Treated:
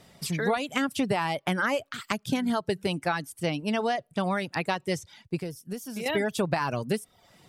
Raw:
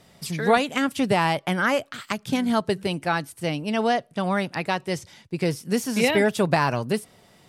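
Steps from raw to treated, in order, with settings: compression 6:1, threshold -22 dBFS, peak gain reduction 9.5 dB; reverb removal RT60 0.6 s; 5.40–6.06 s: graphic EQ 125/250/500/1000/2000/4000/8000 Hz -6/-7/-5/-9/-9/-8/-7 dB

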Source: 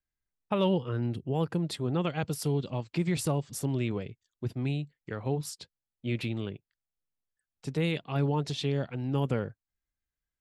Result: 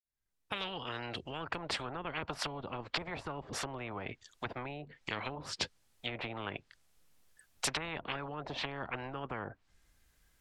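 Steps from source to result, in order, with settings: fade-in on the opening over 2.63 s; low-pass that closes with the level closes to 570 Hz, closed at -27.5 dBFS; spectrum-flattening compressor 10:1; trim +3.5 dB

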